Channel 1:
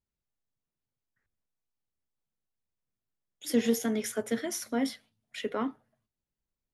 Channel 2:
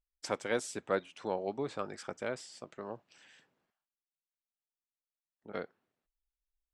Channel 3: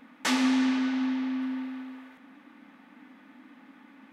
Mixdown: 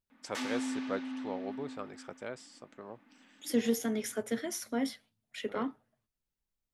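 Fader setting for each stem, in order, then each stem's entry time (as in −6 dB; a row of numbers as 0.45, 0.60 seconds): −3.0, −4.5, −11.5 decibels; 0.00, 0.00, 0.10 seconds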